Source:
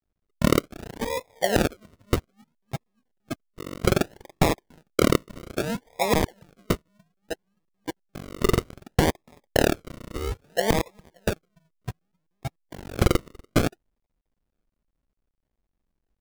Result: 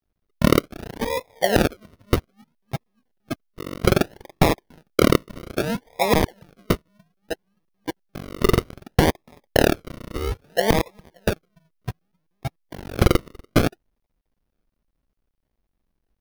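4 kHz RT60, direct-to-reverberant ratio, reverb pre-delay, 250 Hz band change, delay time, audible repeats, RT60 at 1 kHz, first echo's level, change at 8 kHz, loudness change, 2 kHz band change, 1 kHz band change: none, none, none, +3.5 dB, none, none, none, none, +0.5 dB, +3.5 dB, +3.5 dB, +3.5 dB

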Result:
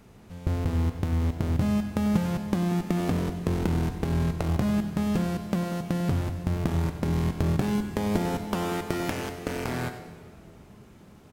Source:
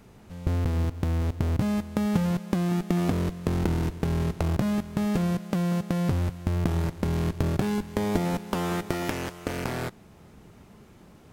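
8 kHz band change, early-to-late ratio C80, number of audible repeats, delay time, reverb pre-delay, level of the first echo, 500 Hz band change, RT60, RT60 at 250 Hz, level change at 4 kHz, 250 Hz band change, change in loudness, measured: -0.5 dB, 9.0 dB, 1, 96 ms, 19 ms, -14.5 dB, -0.5 dB, 2.0 s, 2.6 s, -0.5 dB, 0.0 dB, 0.0 dB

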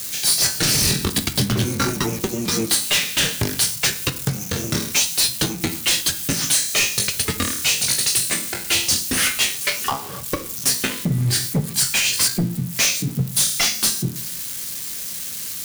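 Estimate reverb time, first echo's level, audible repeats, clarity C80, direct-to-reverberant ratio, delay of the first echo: 0.45 s, none, none, 20.5 dB, 9.0 dB, none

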